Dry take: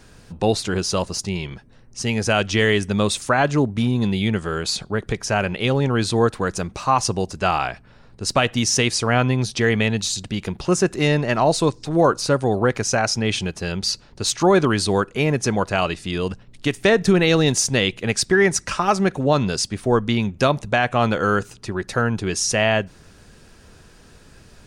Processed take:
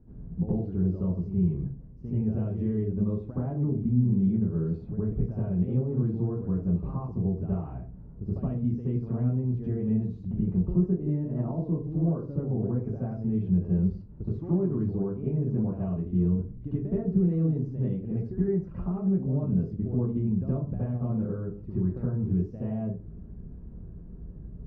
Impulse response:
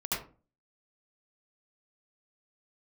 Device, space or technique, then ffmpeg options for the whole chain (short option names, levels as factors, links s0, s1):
television next door: -filter_complex "[0:a]acompressor=threshold=0.0398:ratio=4,lowpass=260[s0];[1:a]atrim=start_sample=2205[s1];[s0][s1]afir=irnorm=-1:irlink=0"